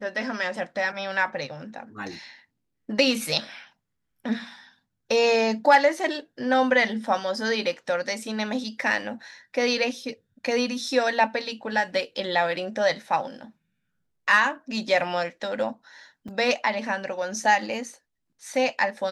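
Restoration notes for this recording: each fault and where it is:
0:16.28: drop-out 4.8 ms

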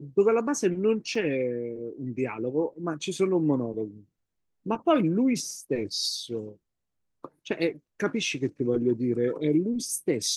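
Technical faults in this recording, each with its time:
0:01.15: drop-out 4.1 ms

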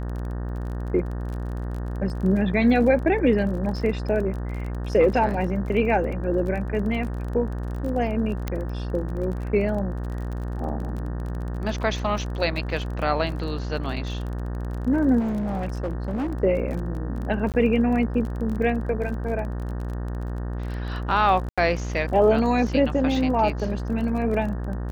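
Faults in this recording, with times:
mains buzz 60 Hz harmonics 31 −29 dBFS
surface crackle 30 per second −32 dBFS
0:08.48: click −13 dBFS
0:15.19–0:16.34: clipping −23 dBFS
0:17.52–0:17.54: drop-out 18 ms
0:21.49–0:21.58: drop-out 86 ms

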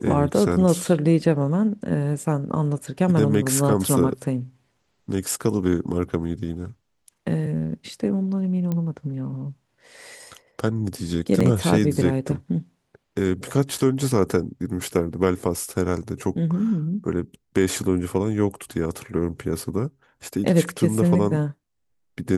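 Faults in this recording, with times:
0:08.72: click −15 dBFS
0:11.40: drop-out 4.8 ms

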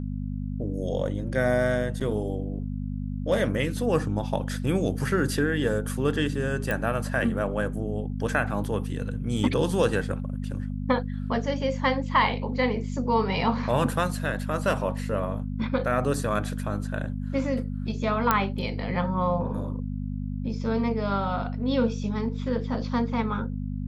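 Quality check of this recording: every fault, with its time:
mains hum 50 Hz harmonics 5 −31 dBFS
0:02.00–0:02.01: drop-out 6 ms
0:06.71: click −14 dBFS
0:18.31: click −6 dBFS

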